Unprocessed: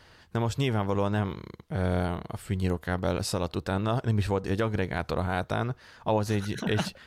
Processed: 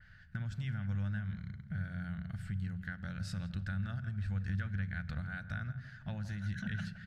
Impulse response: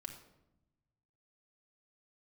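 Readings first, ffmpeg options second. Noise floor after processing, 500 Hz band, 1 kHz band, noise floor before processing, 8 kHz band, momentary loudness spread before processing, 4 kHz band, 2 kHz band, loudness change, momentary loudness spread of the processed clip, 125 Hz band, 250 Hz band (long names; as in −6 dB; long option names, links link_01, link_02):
−55 dBFS, −29.0 dB, −20.5 dB, −56 dBFS, below −15 dB, 7 LU, −16.0 dB, −7.5 dB, −10.0 dB, 6 LU, −6.5 dB, −11.0 dB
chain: -filter_complex "[0:a]firequalizer=gain_entry='entry(190,0);entry(270,-20);entry(390,-27);entry(690,-16);entry(1000,-24);entry(1500,4);entry(2500,-9);entry(11000,-22)':delay=0.05:min_phase=1,acompressor=threshold=-35dB:ratio=4,asplit=2[link_01][link_02];[link_02]adelay=167,lowpass=frequency=1700:poles=1,volume=-12dB,asplit=2[link_03][link_04];[link_04]adelay=167,lowpass=frequency=1700:poles=1,volume=0.43,asplit=2[link_05][link_06];[link_06]adelay=167,lowpass=frequency=1700:poles=1,volume=0.43,asplit=2[link_07][link_08];[link_08]adelay=167,lowpass=frequency=1700:poles=1,volume=0.43[link_09];[link_01][link_03][link_05][link_07][link_09]amix=inputs=5:normalize=0,asplit=2[link_10][link_11];[1:a]atrim=start_sample=2205,lowshelf=frequency=290:gain=10.5[link_12];[link_11][link_12]afir=irnorm=-1:irlink=0,volume=-6.5dB[link_13];[link_10][link_13]amix=inputs=2:normalize=0,adynamicequalizer=threshold=0.00141:dfrequency=3500:dqfactor=0.7:tfrequency=3500:tqfactor=0.7:attack=5:release=100:ratio=0.375:range=2.5:mode=boostabove:tftype=highshelf,volume=-4.5dB"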